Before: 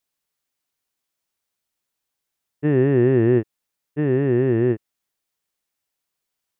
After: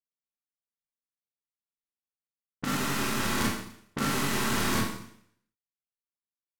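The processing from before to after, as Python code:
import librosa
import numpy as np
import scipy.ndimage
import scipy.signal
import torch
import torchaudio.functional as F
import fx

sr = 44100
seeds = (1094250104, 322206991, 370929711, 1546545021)

y = fx.cycle_switch(x, sr, every=3, mode='muted')
y = fx.leveller(y, sr, passes=5)
y = fx.band_shelf(y, sr, hz=500.0, db=-13.0, octaves=1.7)
y = fx.env_lowpass(y, sr, base_hz=530.0, full_db=-18.0)
y = fx.bass_treble(y, sr, bass_db=-10, treble_db=8)
y = fx.over_compress(y, sr, threshold_db=-24.0, ratio=-0.5)
y = fx.rev_schroeder(y, sr, rt60_s=0.67, comb_ms=28, drr_db=-6.0)
y = y * librosa.db_to_amplitude(-9.0)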